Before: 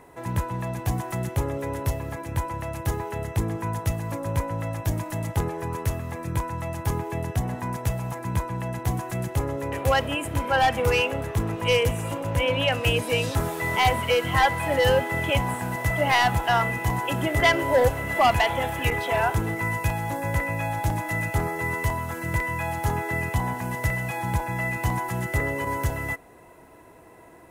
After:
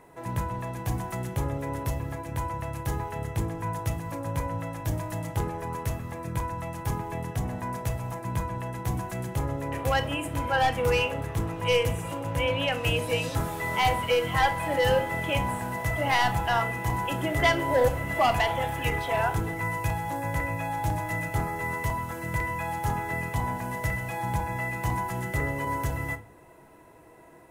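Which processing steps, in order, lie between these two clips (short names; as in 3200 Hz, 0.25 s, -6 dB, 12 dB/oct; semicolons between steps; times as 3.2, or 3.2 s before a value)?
shoebox room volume 270 m³, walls furnished, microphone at 0.66 m; gain -4 dB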